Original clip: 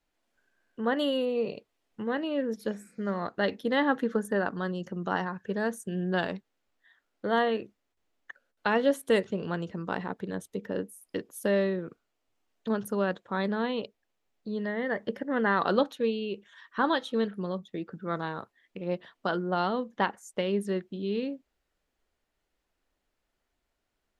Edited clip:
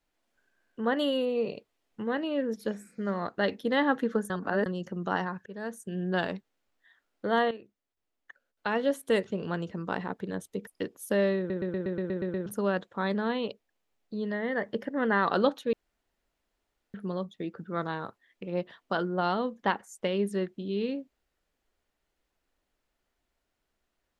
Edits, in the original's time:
0:04.30–0:04.66: reverse
0:05.46–0:06.36: fade in equal-power, from −14.5 dB
0:07.51–0:09.58: fade in linear, from −13 dB
0:10.67–0:11.01: remove
0:11.72: stutter in place 0.12 s, 9 plays
0:16.07–0:17.28: fill with room tone

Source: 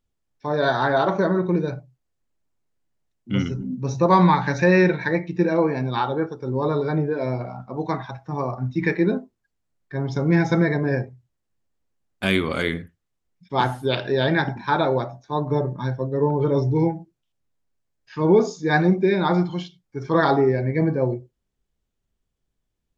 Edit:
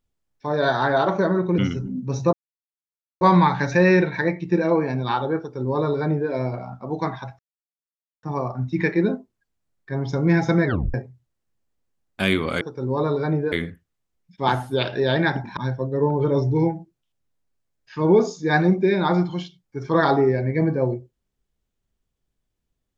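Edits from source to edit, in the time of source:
0:01.58–0:03.33: remove
0:04.08: splice in silence 0.88 s
0:06.26–0:07.17: duplicate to 0:12.64
0:08.26: splice in silence 0.84 s
0:10.69: tape stop 0.28 s
0:14.69–0:15.77: remove

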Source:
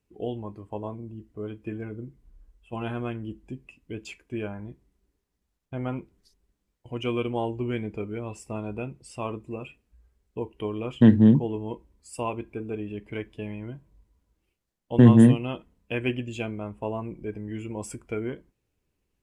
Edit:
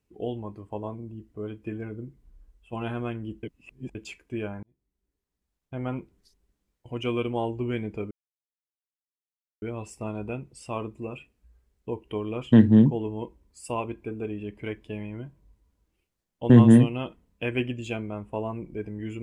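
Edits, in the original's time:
0:03.43–0:03.95: reverse
0:04.63–0:05.94: fade in linear
0:08.11: splice in silence 1.51 s

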